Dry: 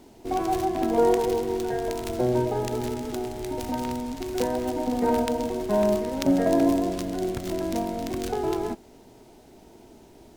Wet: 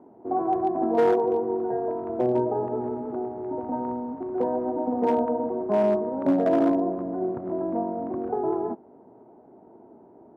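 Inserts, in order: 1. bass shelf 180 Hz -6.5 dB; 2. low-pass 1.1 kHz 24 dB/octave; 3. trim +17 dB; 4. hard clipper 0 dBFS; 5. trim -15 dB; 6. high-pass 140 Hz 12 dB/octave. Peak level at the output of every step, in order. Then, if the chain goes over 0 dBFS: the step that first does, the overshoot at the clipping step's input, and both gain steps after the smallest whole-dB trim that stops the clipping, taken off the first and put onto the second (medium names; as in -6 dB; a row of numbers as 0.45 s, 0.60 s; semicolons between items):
-6.0 dBFS, -11.5 dBFS, +5.5 dBFS, 0.0 dBFS, -15.0 dBFS, -11.5 dBFS; step 3, 5.5 dB; step 3 +11 dB, step 5 -9 dB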